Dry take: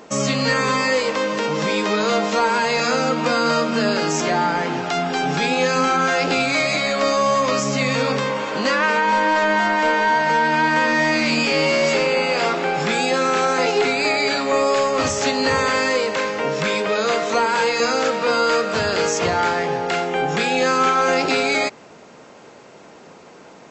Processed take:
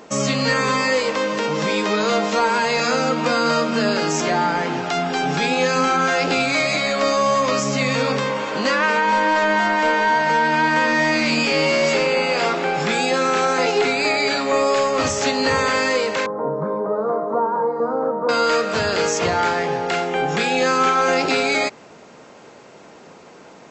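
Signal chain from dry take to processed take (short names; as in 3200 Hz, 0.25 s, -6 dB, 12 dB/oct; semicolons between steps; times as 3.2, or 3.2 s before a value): 16.26–18.29 elliptic band-pass 130–1100 Hz, stop band 40 dB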